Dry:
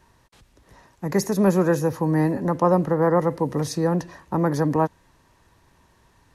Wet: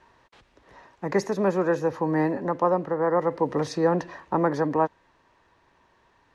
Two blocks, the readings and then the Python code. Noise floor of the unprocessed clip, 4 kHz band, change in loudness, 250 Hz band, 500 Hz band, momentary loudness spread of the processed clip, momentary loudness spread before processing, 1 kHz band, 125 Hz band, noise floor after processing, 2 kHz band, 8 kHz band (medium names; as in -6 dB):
-60 dBFS, -4.5 dB, -3.0 dB, -5.0 dB, -1.5 dB, 4 LU, 6 LU, -0.5 dB, -8.5 dB, -64 dBFS, -0.5 dB, no reading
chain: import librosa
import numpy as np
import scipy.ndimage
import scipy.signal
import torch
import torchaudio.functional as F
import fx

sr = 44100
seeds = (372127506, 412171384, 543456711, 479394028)

y = scipy.signal.sosfilt(scipy.signal.butter(2, 6200.0, 'lowpass', fs=sr, output='sos'), x)
y = fx.bass_treble(y, sr, bass_db=-11, treble_db=-8)
y = fx.rider(y, sr, range_db=5, speed_s=0.5)